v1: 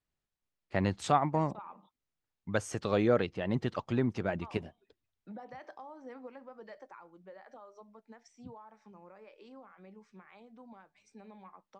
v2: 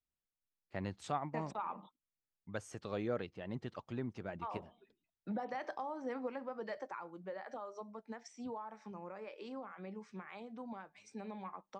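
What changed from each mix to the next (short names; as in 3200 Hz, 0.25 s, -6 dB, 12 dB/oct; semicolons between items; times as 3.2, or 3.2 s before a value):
first voice -11.0 dB; second voice +6.5 dB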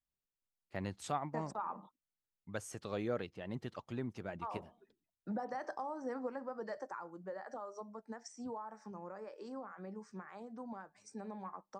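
second voice: add band shelf 2900 Hz -12 dB 1.1 oct; master: remove air absorption 62 m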